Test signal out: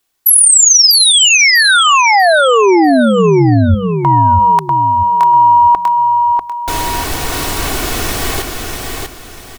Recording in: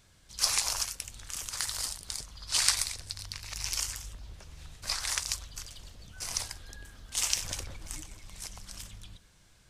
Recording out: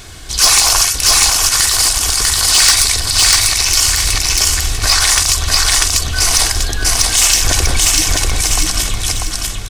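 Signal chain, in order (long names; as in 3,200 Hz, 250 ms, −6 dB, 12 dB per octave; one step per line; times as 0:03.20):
mains-hum notches 50/100/150/200 Hz
comb filter 2.7 ms, depth 44%
soft clipping −21 dBFS
repeating echo 644 ms, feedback 31%, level −4 dB
boost into a limiter +28.5 dB
level −1 dB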